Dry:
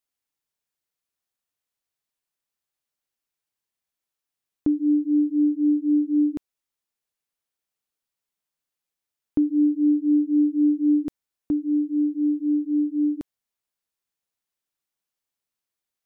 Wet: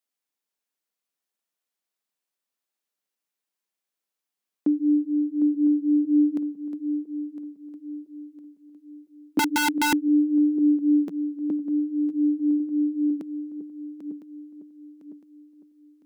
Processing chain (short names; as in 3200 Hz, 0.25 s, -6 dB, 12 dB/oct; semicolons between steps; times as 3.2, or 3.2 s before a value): regenerating reverse delay 0.504 s, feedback 61%, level -9.5 dB; elliptic high-pass 180 Hz, stop band 40 dB; 9.39–9.93 wrapped overs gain 18 dB